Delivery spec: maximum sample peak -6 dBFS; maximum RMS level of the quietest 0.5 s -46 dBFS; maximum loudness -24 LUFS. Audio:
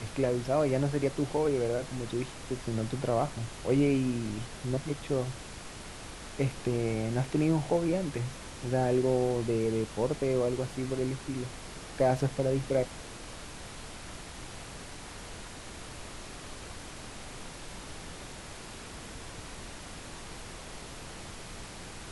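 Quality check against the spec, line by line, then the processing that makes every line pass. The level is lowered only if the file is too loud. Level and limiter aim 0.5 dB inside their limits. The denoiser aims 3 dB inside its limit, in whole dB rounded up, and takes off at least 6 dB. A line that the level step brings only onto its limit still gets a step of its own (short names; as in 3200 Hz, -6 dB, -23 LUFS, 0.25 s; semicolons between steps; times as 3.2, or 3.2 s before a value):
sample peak -13.0 dBFS: OK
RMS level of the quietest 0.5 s -44 dBFS: fail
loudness -30.5 LUFS: OK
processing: denoiser 6 dB, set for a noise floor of -44 dBFS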